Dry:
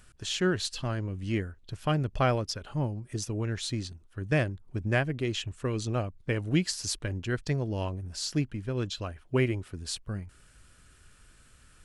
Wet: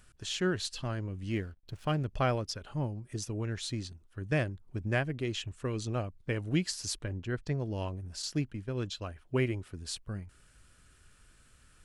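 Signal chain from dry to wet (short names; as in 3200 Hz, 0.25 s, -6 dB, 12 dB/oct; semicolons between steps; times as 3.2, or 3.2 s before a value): 1.31–2.06 backlash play -50.5 dBFS; 7.04–7.6 high shelf 2800 Hz -8.5 dB; 8.22–9.09 gate -37 dBFS, range -7 dB; gain -3.5 dB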